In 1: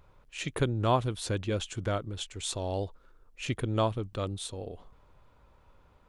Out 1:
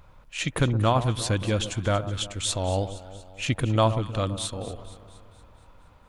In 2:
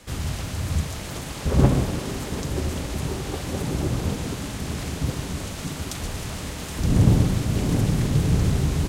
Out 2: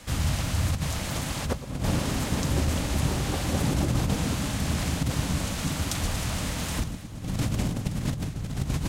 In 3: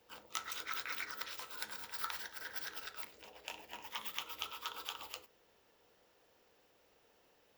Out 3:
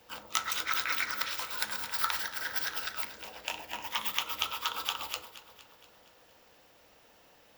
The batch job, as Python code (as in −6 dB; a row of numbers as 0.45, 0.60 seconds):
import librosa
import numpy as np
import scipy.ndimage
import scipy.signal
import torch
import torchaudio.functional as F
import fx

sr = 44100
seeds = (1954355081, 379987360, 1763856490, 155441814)

p1 = fx.peak_eq(x, sr, hz=400.0, db=-8.0, octaves=0.42)
p2 = fx.over_compress(p1, sr, threshold_db=-25.0, ratio=-0.5)
p3 = p2 + fx.echo_alternate(p2, sr, ms=117, hz=1200.0, feedback_pct=74, wet_db=-12.5, dry=0)
y = librosa.util.normalize(p3) * 10.0 ** (-9 / 20.0)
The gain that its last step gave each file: +7.0, −0.5, +10.0 decibels